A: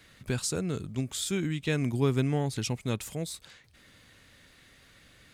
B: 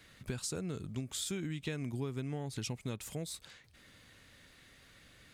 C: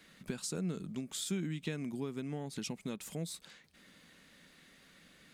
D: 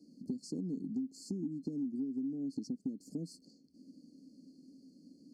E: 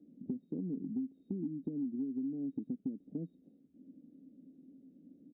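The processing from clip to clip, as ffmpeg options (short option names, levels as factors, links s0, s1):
-af "acompressor=threshold=0.0251:ratio=6,volume=0.75"
-af "lowshelf=f=140:t=q:w=3:g=-7,volume=0.891"
-filter_complex "[0:a]afftfilt=real='re*(1-between(b*sr/4096,870,4200))':imag='im*(1-between(b*sr/4096,870,4200))':win_size=4096:overlap=0.75,asplit=3[s0][s1][s2];[s0]bandpass=f=270:t=q:w=8,volume=1[s3];[s1]bandpass=f=2290:t=q:w=8,volume=0.501[s4];[s2]bandpass=f=3010:t=q:w=8,volume=0.355[s5];[s3][s4][s5]amix=inputs=3:normalize=0,acompressor=threshold=0.00251:ratio=6,volume=7.08"
-af "aresample=8000,aresample=44100"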